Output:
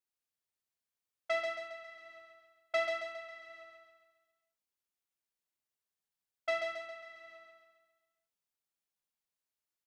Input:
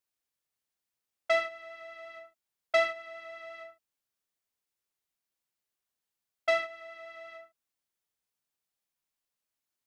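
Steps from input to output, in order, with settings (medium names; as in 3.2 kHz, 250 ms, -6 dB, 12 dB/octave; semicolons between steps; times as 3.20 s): feedback delay 136 ms, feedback 50%, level -4 dB; trim -7 dB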